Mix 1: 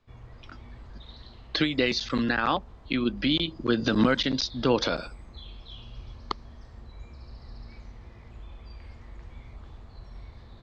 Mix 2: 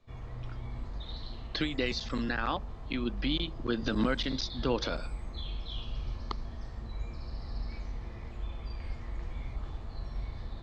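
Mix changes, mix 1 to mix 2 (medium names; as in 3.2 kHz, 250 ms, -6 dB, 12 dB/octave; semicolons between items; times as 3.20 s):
speech -7.0 dB; background: send +11.0 dB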